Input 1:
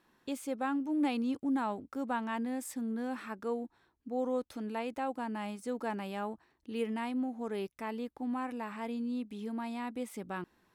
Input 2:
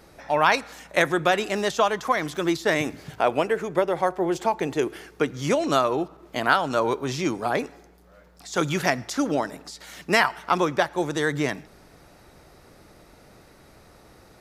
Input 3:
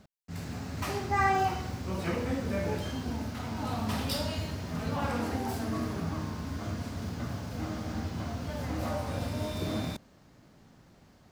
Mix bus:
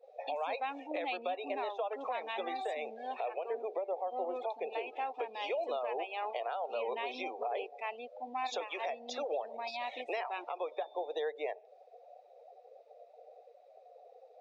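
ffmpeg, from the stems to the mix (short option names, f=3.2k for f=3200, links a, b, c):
-filter_complex "[0:a]aeval=exprs='if(lt(val(0),0),0.447*val(0),val(0))':c=same,highshelf=f=2.4k:g=6.5,volume=0dB[a];[1:a]acompressor=threshold=-31dB:ratio=4,highpass=f=500:t=q:w=4.9,adynamicequalizer=threshold=0.0112:dfrequency=1800:dqfactor=0.7:tfrequency=1800:tqfactor=0.7:attack=5:release=100:ratio=0.375:range=2.5:mode=cutabove:tftype=highshelf,volume=-5.5dB[b];[2:a]adelay=1250,volume=-17.5dB[c];[a][b][c]amix=inputs=3:normalize=0,highpass=f=370:w=0.5412,highpass=f=370:w=1.3066,equalizer=f=510:t=q:w=4:g=-3,equalizer=f=740:t=q:w=4:g=9,equalizer=f=1.5k:t=q:w=4:g=-5,equalizer=f=2.5k:t=q:w=4:g=9,equalizer=f=3.7k:t=q:w=4:g=8,lowpass=f=7k:w=0.5412,lowpass=f=7k:w=1.3066,afftdn=nr=23:nf=-41,alimiter=level_in=3dB:limit=-24dB:level=0:latency=1:release=248,volume=-3dB"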